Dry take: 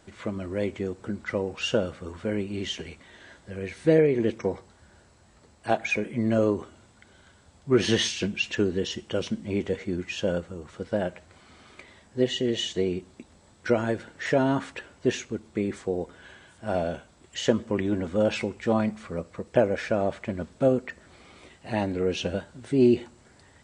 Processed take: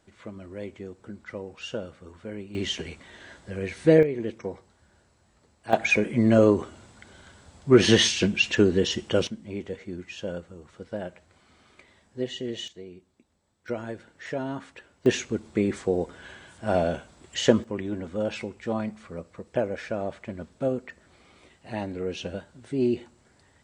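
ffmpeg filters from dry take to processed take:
ffmpeg -i in.wav -af "asetnsamples=nb_out_samples=441:pad=0,asendcmd='2.55 volume volume 2.5dB;4.03 volume volume -6dB;5.73 volume volume 5dB;9.27 volume volume -6.5dB;12.68 volume volume -16.5dB;13.68 volume volume -8.5dB;15.06 volume volume 3.5dB;17.64 volume volume -5dB',volume=-8.5dB" out.wav

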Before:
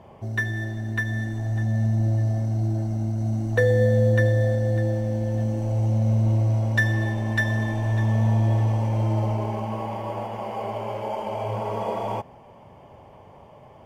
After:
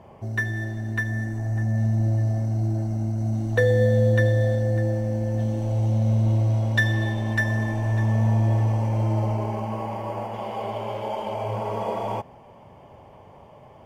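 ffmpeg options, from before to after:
ffmpeg -i in.wav -af "asetnsamples=nb_out_samples=441:pad=0,asendcmd='1.07 equalizer g -13.5;1.78 equalizer g -5.5;3.35 equalizer g 3;4.63 equalizer g -5.5;5.39 equalizer g 6;7.35 equalizer g -5;10.34 equalizer g 7;11.33 equalizer g 0',equalizer=frequency=3500:width_type=o:width=0.35:gain=-4" out.wav

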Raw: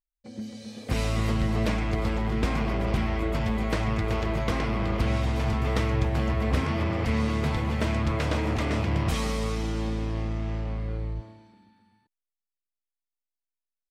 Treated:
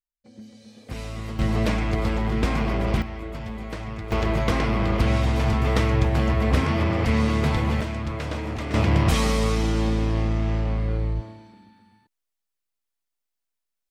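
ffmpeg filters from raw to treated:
ffmpeg -i in.wav -af "asetnsamples=nb_out_samples=441:pad=0,asendcmd='1.39 volume volume 3dB;3.02 volume volume -6.5dB;4.12 volume volume 4.5dB;7.81 volume volume -3dB;8.74 volume volume 6.5dB',volume=-7dB" out.wav

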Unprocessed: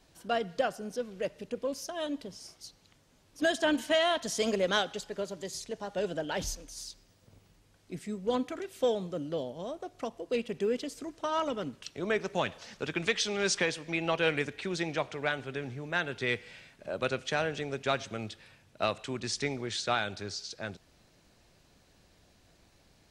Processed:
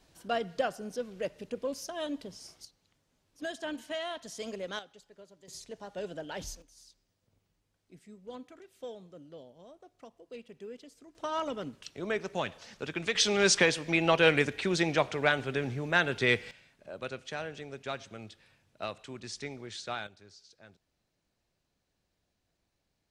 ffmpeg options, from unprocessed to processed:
ffmpeg -i in.wav -af "asetnsamples=nb_out_samples=441:pad=0,asendcmd='2.65 volume volume -10dB;4.79 volume volume -18dB;5.48 volume volume -6dB;6.62 volume volume -14.5dB;11.15 volume volume -2.5dB;13.15 volume volume 5dB;16.51 volume volume -7.5dB;20.07 volume volume -17dB',volume=-1dB" out.wav

